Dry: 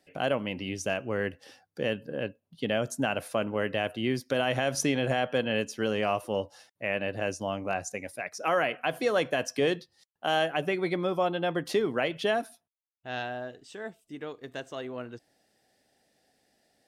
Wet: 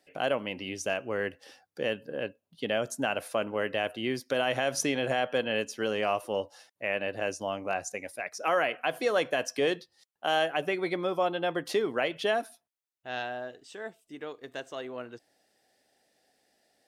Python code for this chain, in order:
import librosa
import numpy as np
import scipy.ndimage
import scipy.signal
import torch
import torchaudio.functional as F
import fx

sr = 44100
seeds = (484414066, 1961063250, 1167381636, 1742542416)

y = fx.bass_treble(x, sr, bass_db=-8, treble_db=0)